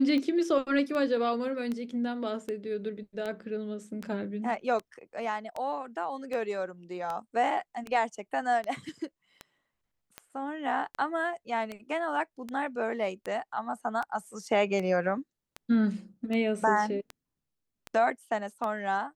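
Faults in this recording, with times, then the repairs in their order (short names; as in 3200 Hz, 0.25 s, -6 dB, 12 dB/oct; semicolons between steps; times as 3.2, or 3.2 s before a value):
tick 78 rpm -22 dBFS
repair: de-click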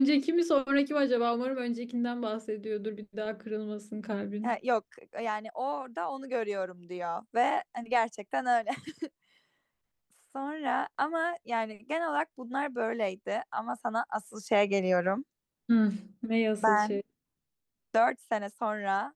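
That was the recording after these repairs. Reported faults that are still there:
none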